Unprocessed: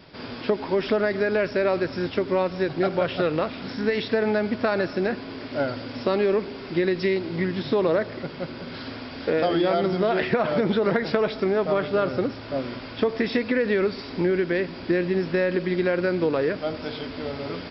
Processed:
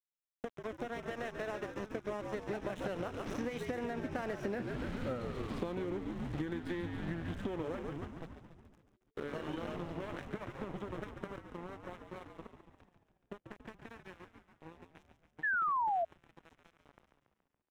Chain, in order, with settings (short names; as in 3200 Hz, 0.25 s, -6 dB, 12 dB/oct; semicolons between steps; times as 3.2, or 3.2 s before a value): Doppler pass-by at 4.61, 36 m/s, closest 5.5 m; low shelf 210 Hz +6.5 dB; vocal rider within 5 dB 0.5 s; crossover distortion -46.5 dBFS; bell 4600 Hz -11.5 dB 0.35 oct; on a send: frequency-shifting echo 0.141 s, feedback 62%, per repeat -75 Hz, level -8 dB; on the sum: compressor 16:1, threshold -45 dBFS, peak gain reduction 20.5 dB; painted sound fall, 15.43–16.05, 650–1800 Hz -43 dBFS; gain +11 dB